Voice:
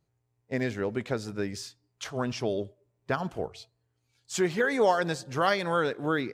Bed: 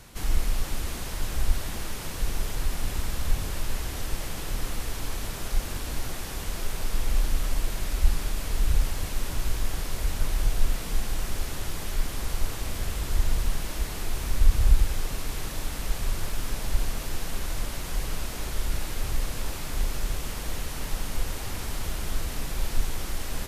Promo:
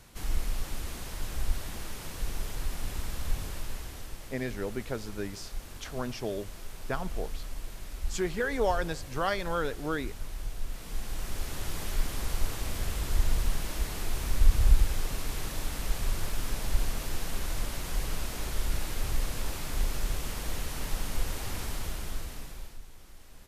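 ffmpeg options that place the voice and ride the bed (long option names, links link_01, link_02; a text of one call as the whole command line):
ffmpeg -i stem1.wav -i stem2.wav -filter_complex "[0:a]adelay=3800,volume=-4.5dB[link_01];[1:a]volume=4.5dB,afade=type=out:start_time=3.41:duration=0.77:silence=0.473151,afade=type=in:start_time=10.67:duration=1.11:silence=0.316228,afade=type=out:start_time=21.6:duration=1.19:silence=0.11885[link_02];[link_01][link_02]amix=inputs=2:normalize=0" out.wav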